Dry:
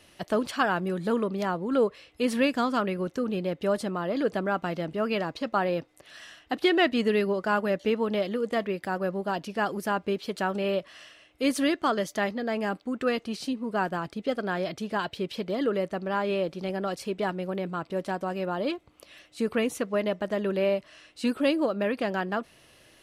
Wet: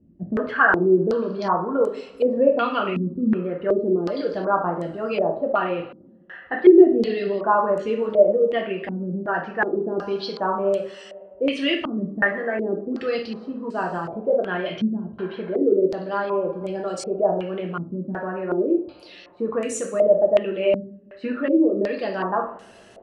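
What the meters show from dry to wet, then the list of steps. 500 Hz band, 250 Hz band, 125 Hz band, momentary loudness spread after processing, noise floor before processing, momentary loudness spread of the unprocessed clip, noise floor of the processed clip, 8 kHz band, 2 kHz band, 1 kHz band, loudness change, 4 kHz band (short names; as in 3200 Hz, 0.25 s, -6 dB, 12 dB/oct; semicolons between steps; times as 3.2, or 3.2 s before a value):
+7.5 dB, +5.5 dB, +3.0 dB, 11 LU, -59 dBFS, 7 LU, -48 dBFS, n/a, +5.5 dB, +4.5 dB, +6.0 dB, 0.0 dB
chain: formant sharpening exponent 1.5; two-slope reverb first 0.46 s, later 2.7 s, from -21 dB, DRR -0.5 dB; stepped low-pass 2.7 Hz 230–7800 Hz; gain -1 dB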